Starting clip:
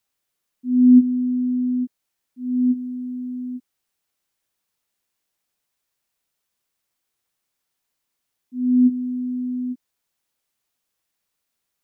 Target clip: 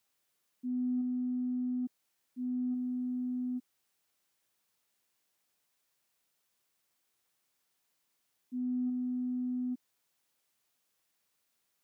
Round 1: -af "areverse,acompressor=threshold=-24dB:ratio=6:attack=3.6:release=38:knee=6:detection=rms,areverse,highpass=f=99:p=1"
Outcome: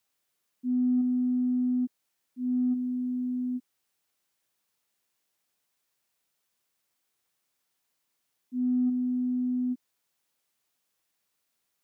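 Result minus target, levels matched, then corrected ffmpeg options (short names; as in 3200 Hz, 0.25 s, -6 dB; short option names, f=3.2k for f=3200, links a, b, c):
compressor: peak gain reduction -7.5 dB
-af "areverse,acompressor=threshold=-33dB:ratio=6:attack=3.6:release=38:knee=6:detection=rms,areverse,highpass=f=99:p=1"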